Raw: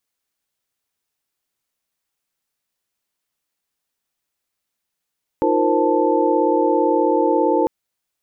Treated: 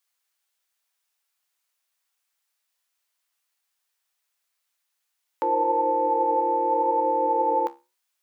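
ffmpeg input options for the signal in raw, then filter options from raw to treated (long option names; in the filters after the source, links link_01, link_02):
-f lavfi -i "aevalsrc='0.0944*(sin(2*PI*311.13*t)+sin(2*PI*349.23*t)+sin(2*PI*466.16*t)+sin(2*PI*523.25*t)+sin(2*PI*880*t))':duration=2.25:sample_rate=44100"
-af "highpass=800,acontrast=61,flanger=delay=9.3:depth=5.3:regen=70:speed=0.84:shape=sinusoidal"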